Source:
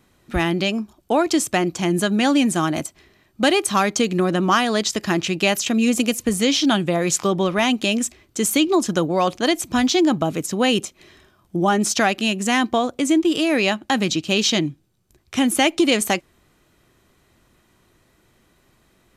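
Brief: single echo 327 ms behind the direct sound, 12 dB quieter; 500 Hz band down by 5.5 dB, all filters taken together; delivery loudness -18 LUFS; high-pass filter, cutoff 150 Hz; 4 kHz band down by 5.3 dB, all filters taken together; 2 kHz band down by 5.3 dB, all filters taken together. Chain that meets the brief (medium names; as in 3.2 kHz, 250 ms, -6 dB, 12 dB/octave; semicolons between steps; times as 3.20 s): high-pass 150 Hz; peaking EQ 500 Hz -7.5 dB; peaking EQ 2 kHz -5 dB; peaking EQ 4 kHz -5 dB; delay 327 ms -12 dB; trim +5 dB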